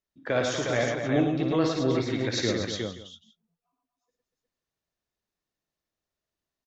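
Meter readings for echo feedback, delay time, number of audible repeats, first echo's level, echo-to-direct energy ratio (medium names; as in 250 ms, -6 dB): no regular repeats, 56 ms, 5, -8.0 dB, 0.5 dB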